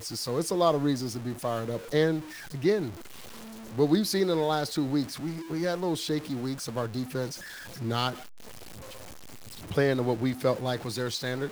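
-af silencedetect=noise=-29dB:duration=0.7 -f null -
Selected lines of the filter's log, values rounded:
silence_start: 2.88
silence_end: 3.78 | silence_duration: 0.90
silence_start: 8.11
silence_end: 9.71 | silence_duration: 1.60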